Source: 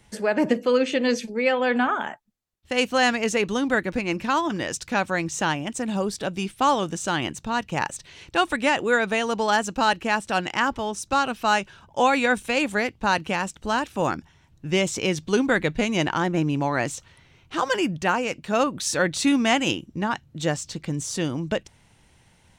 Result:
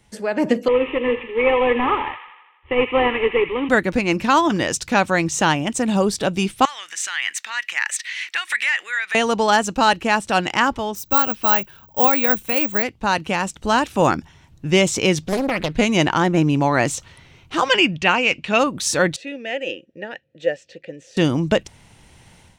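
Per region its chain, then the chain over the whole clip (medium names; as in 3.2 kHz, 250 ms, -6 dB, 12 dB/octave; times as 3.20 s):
0.68–3.69 s: CVSD coder 16 kbps + static phaser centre 1 kHz, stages 8 + feedback echo behind a high-pass 82 ms, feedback 60%, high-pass 1.6 kHz, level -7.5 dB
6.65–9.15 s: compression 16:1, threshold -28 dBFS + resonant high-pass 1.9 kHz, resonance Q 4.7
10.95–12.83 s: treble shelf 4.6 kHz -6 dB + careless resampling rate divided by 2×, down filtered, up zero stuff
15.22–15.77 s: compression 12:1, threshold -21 dBFS + loudspeaker Doppler distortion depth 0.74 ms
17.64–18.59 s: low-pass 6.9 kHz + peaking EQ 2.6 kHz +12 dB 0.88 oct
19.16–21.17 s: median filter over 3 samples + vowel filter e
whole clip: peaking EQ 1.6 kHz -2 dB 0.29 oct; level rider; trim -1 dB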